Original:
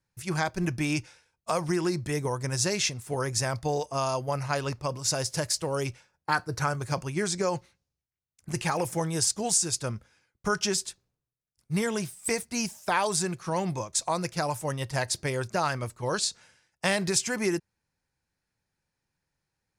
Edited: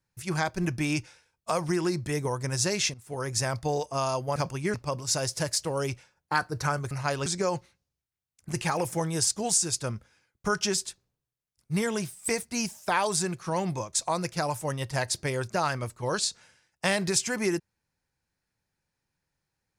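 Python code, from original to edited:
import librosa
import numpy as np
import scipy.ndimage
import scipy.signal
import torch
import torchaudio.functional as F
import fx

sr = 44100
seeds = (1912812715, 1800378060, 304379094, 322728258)

y = fx.edit(x, sr, fx.fade_in_from(start_s=2.94, length_s=0.45, floor_db=-12.5),
    fx.swap(start_s=4.36, length_s=0.35, other_s=6.88, other_length_s=0.38), tone=tone)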